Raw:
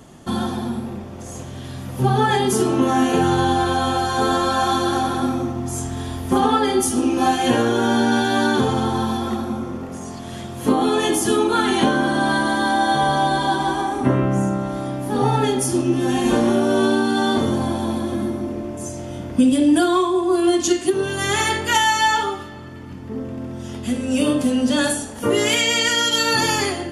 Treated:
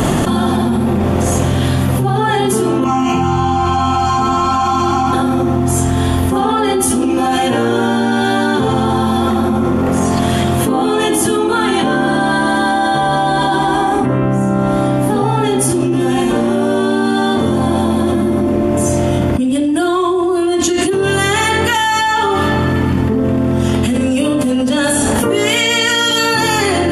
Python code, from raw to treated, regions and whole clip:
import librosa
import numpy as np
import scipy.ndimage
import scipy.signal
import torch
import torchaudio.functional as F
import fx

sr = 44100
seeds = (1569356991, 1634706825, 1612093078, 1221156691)

y = fx.chain(x, sr, fx.fixed_phaser(hz=2500.0, stages=8),
    fx.echo_single(ms=732, db=-22.0), at=(2.84, 5.13))
y = fx.peak_eq(y, sr, hz=5600.0, db=-6.5, octaves=0.9)
y = fx.env_flatten(y, sr, amount_pct=100)
y = F.gain(torch.from_numpy(y), -2.5).numpy()